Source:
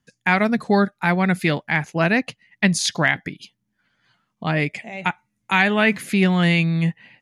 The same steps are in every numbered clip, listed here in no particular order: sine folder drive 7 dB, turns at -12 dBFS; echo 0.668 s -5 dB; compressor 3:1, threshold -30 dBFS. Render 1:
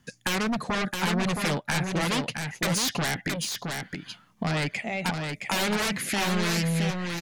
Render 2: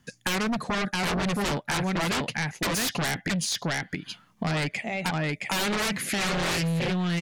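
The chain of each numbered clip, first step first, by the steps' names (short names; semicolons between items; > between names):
sine folder > compressor > echo; echo > sine folder > compressor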